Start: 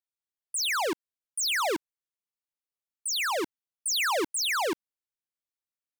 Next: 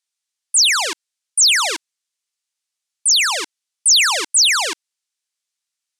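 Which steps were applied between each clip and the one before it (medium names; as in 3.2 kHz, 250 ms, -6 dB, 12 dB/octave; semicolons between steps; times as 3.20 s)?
frequency weighting ITU-R 468; trim +5 dB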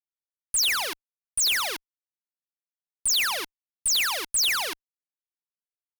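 in parallel at -9 dB: companded quantiser 2-bit; on the sum: fuzz box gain 33 dB, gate -36 dBFS; trim -8 dB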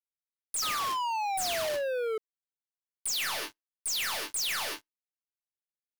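chord resonator D2 sus4, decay 0.22 s; painted sound fall, 0.62–2.18 s, 430–1300 Hz -33 dBFS; waveshaping leveller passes 5; trim -8 dB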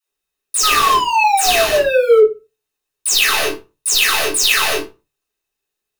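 small resonant body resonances 420/2600/3700 Hz, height 13 dB, ringing for 65 ms; phase dispersion lows, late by 86 ms, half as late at 370 Hz; reverberation RT60 0.25 s, pre-delay 3 ms, DRR -6.5 dB; trim +6.5 dB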